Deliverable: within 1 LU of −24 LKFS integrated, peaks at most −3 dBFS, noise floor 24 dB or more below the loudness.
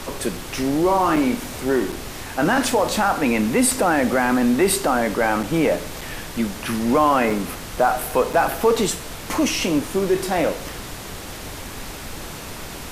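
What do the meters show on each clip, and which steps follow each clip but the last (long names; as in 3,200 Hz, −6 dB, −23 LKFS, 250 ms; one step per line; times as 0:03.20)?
number of dropouts 6; longest dropout 5.0 ms; background noise floor −34 dBFS; target noise floor −45 dBFS; integrated loudness −20.5 LKFS; sample peak −6.0 dBFS; target loudness −24.0 LKFS
→ repair the gap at 0:01.16/0:01.92/0:05.43/0:06.01/0:07.30/0:08.33, 5 ms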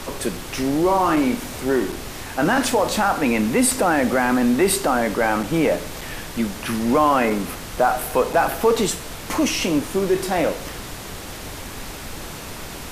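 number of dropouts 0; background noise floor −34 dBFS; target noise floor −45 dBFS
→ noise reduction from a noise print 11 dB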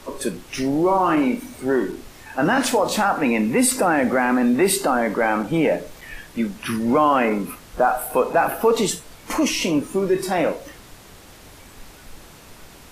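background noise floor −45 dBFS; integrated loudness −20.5 LKFS; sample peak −6.5 dBFS; target loudness −24.0 LKFS
→ level −3.5 dB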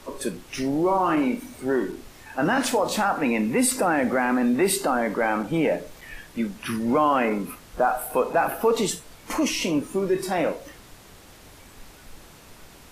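integrated loudness −24.0 LKFS; sample peak −10.0 dBFS; background noise floor −48 dBFS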